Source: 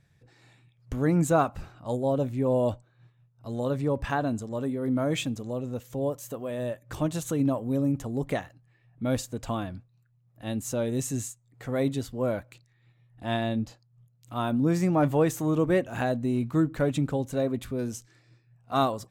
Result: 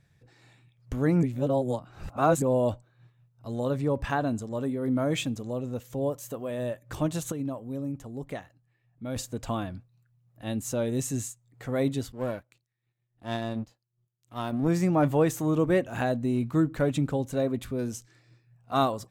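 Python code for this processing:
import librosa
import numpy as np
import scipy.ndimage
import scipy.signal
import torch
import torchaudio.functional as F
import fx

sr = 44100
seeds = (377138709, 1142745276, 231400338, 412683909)

y = fx.power_curve(x, sr, exponent=1.4, at=(12.12, 14.68))
y = fx.edit(y, sr, fx.reverse_span(start_s=1.23, length_s=1.19),
    fx.clip_gain(start_s=7.32, length_s=1.84, db=-7.5), tone=tone)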